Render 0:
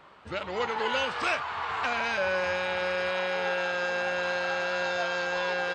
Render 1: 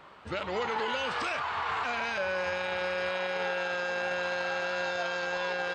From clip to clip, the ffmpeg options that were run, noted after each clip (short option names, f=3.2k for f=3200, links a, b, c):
-af "alimiter=level_in=0.5dB:limit=-24dB:level=0:latency=1:release=15,volume=-0.5dB,volume=1.5dB"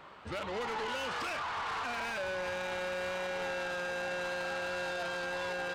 -af "asoftclip=type=tanh:threshold=-32.5dB"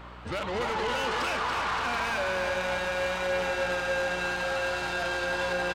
-af "aecho=1:1:284|568|852|1136|1420|1704|1988:0.531|0.292|0.161|0.0883|0.0486|0.0267|0.0147,aeval=exprs='val(0)+0.00251*(sin(2*PI*60*n/s)+sin(2*PI*2*60*n/s)/2+sin(2*PI*3*60*n/s)/3+sin(2*PI*4*60*n/s)/4+sin(2*PI*5*60*n/s)/5)':c=same,volume=5.5dB"